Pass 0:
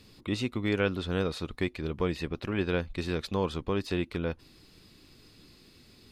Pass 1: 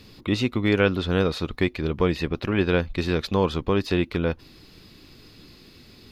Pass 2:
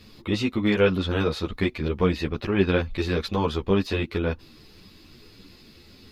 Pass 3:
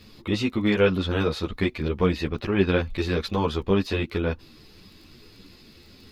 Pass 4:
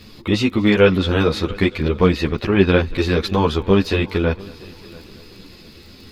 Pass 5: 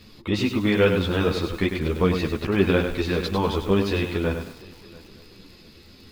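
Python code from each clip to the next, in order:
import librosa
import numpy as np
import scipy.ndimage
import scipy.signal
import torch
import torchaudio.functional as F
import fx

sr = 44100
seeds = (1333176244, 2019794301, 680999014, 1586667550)

y1 = fx.peak_eq(x, sr, hz=8600.0, db=-8.0, octaves=0.56)
y1 = y1 * 10.0 ** (7.5 / 20.0)
y2 = fx.ensemble(y1, sr)
y2 = y2 * 10.0 ** (2.0 / 20.0)
y3 = fx.dmg_crackle(y2, sr, seeds[0], per_s=17.0, level_db=-42.0)
y4 = fx.echo_heads(y3, sr, ms=229, heads='first and third', feedback_pct=45, wet_db=-23)
y4 = y4 * 10.0 ** (7.0 / 20.0)
y5 = fx.echo_crushed(y4, sr, ms=99, feedback_pct=35, bits=6, wet_db=-6.5)
y5 = y5 * 10.0 ** (-6.0 / 20.0)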